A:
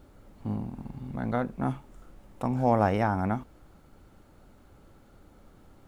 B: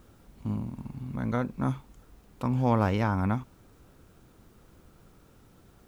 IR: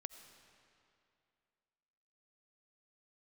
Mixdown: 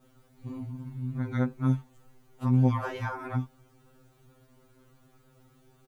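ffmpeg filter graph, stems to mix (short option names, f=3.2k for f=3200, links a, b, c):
-filter_complex "[0:a]volume=-10.5dB[a];[1:a]bandreject=f=5.3k:w=21,adelay=16,volume=-1.5dB[b];[a][b]amix=inputs=2:normalize=0,afftfilt=real='re*2.45*eq(mod(b,6),0)':imag='im*2.45*eq(mod(b,6),0)':win_size=2048:overlap=0.75"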